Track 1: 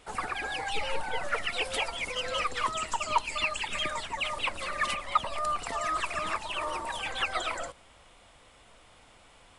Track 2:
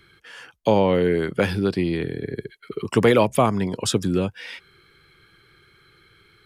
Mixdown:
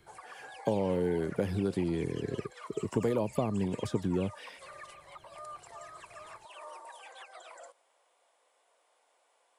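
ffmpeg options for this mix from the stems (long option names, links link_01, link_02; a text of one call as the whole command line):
ffmpeg -i stem1.wav -i stem2.wav -filter_complex "[0:a]highpass=frequency=460:width=0.5412,highpass=frequency=460:width=1.3066,alimiter=level_in=0.5dB:limit=-24dB:level=0:latency=1:release=197,volume=-0.5dB,volume=-9dB[link_01];[1:a]acrossover=split=740|4200[link_02][link_03][link_04];[link_02]acompressor=threshold=-21dB:ratio=4[link_05];[link_03]acompressor=threshold=-36dB:ratio=4[link_06];[link_04]acompressor=threshold=-47dB:ratio=4[link_07];[link_05][link_06][link_07]amix=inputs=3:normalize=0,volume=-5dB[link_08];[link_01][link_08]amix=inputs=2:normalize=0,equalizer=frequency=2900:width_type=o:width=2:gain=-9,bandreject=frequency=1300:width=12" out.wav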